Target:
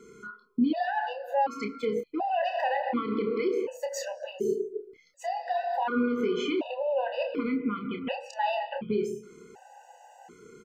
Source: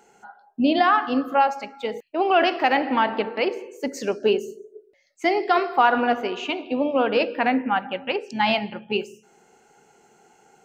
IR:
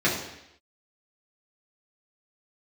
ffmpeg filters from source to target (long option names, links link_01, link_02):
-filter_complex "[0:a]tiltshelf=frequency=1100:gain=4,acompressor=threshold=-20dB:ratio=6,alimiter=level_in=1dB:limit=-24dB:level=0:latency=1:release=111,volume=-1dB,asplit=2[link_01][link_02];[link_02]adelay=29,volume=-6.5dB[link_03];[link_01][link_03]amix=inputs=2:normalize=0,afftfilt=real='re*gt(sin(2*PI*0.68*pts/sr)*(1-2*mod(floor(b*sr/1024/500),2)),0)':imag='im*gt(sin(2*PI*0.68*pts/sr)*(1-2*mod(floor(b*sr/1024/500),2)),0)':win_size=1024:overlap=0.75,volume=6dB"